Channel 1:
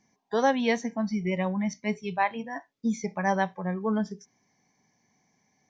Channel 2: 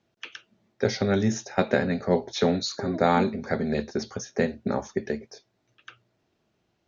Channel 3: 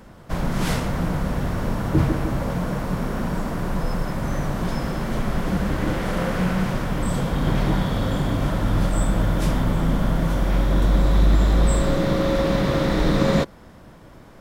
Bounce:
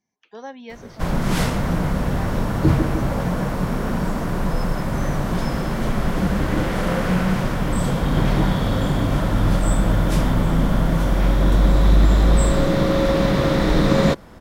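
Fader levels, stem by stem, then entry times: −12.5, −20.0, +2.5 decibels; 0.00, 0.00, 0.70 seconds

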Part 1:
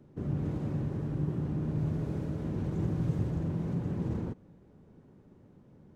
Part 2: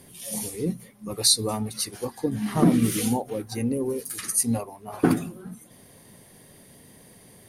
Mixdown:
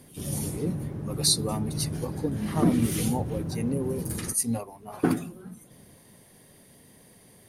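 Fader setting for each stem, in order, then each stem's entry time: −0.5, −3.5 decibels; 0.00, 0.00 seconds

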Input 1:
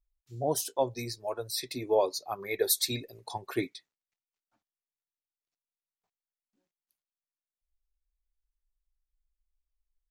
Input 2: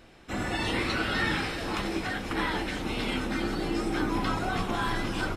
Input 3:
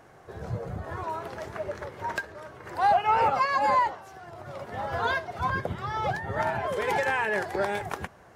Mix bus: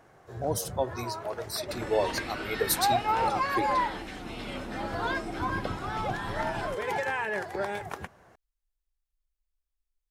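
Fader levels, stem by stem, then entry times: −1.0, −8.0, −4.0 decibels; 0.00, 1.40, 0.00 seconds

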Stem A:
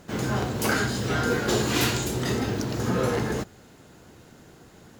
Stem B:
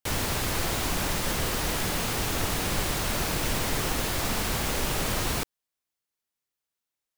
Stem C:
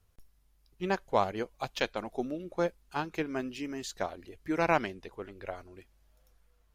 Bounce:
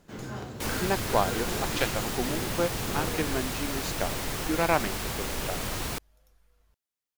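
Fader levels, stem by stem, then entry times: −11.0, −4.5, +2.0 decibels; 0.00, 0.55, 0.00 seconds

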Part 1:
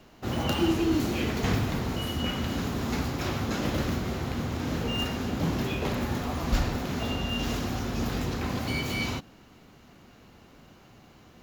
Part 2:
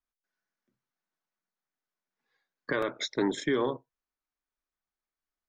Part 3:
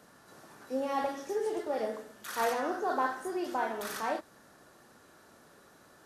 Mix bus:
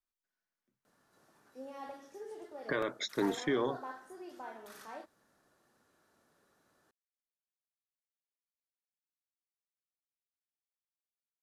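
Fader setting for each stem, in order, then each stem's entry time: muted, −4.0 dB, −14.0 dB; muted, 0.00 s, 0.85 s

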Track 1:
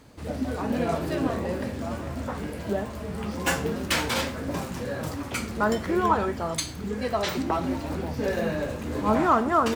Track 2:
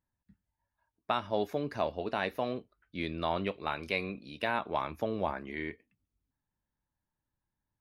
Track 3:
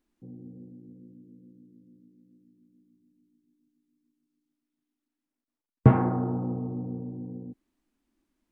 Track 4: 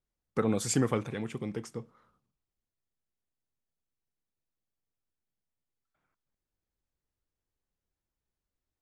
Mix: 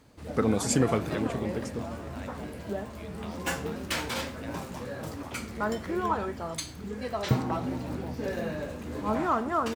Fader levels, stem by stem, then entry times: −6.0, −14.0, −8.5, +2.5 decibels; 0.00, 0.00, 1.45, 0.00 seconds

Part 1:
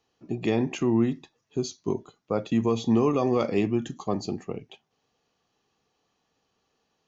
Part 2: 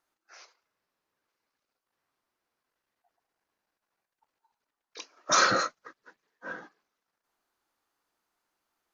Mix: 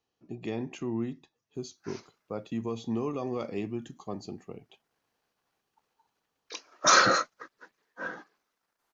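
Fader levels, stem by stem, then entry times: −9.5, +2.5 decibels; 0.00, 1.55 seconds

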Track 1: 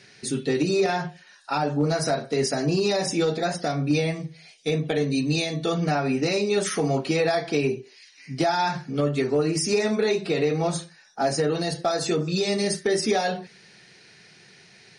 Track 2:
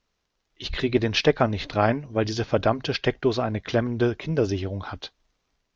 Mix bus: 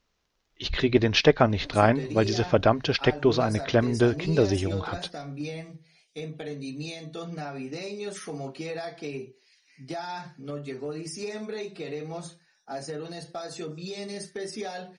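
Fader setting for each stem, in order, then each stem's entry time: −12.0, +1.0 decibels; 1.50, 0.00 seconds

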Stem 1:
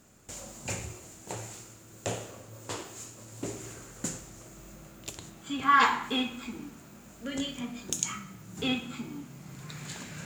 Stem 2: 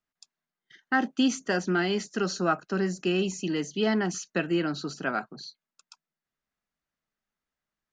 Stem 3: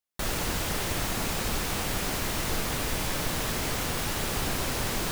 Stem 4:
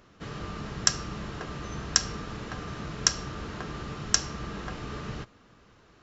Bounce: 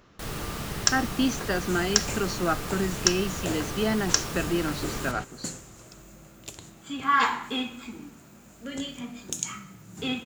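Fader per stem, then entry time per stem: −0.5, −1.0, −7.5, +0.5 decibels; 1.40, 0.00, 0.00, 0.00 seconds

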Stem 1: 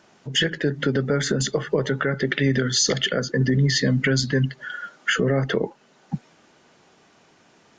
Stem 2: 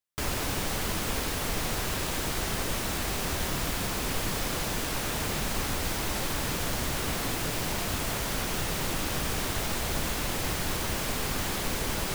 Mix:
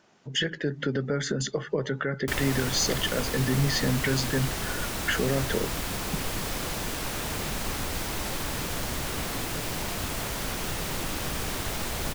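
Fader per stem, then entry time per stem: −6.0, −1.0 decibels; 0.00, 2.10 seconds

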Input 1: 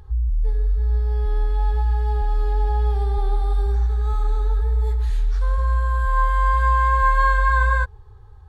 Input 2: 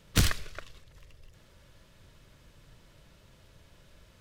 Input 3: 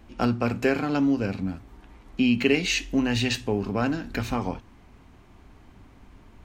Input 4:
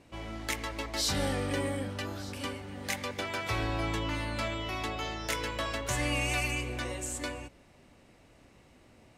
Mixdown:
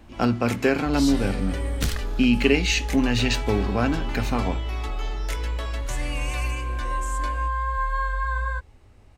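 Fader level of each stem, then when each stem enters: −8.5, −3.0, +2.0, −2.0 decibels; 0.75, 1.65, 0.00, 0.00 seconds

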